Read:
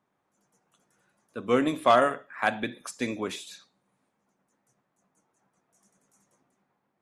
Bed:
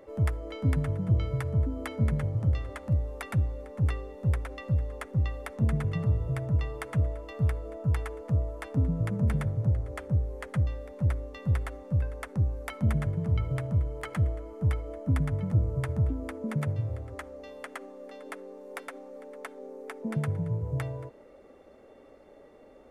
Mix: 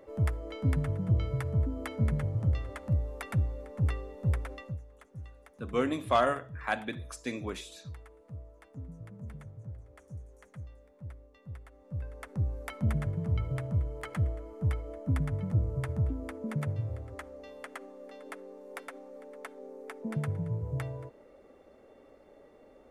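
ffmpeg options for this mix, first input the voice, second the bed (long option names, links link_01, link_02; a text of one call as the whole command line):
ffmpeg -i stem1.wav -i stem2.wav -filter_complex "[0:a]adelay=4250,volume=-5.5dB[link_01];[1:a]volume=12.5dB,afade=type=out:start_time=4.52:duration=0.27:silence=0.16788,afade=type=in:start_time=11.71:duration=0.83:silence=0.188365[link_02];[link_01][link_02]amix=inputs=2:normalize=0" out.wav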